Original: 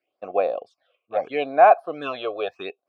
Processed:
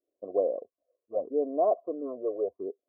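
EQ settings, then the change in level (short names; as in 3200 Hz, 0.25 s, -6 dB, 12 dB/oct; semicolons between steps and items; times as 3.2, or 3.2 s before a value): steep low-pass 1000 Hz 72 dB/oct; fixed phaser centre 340 Hz, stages 4; 0.0 dB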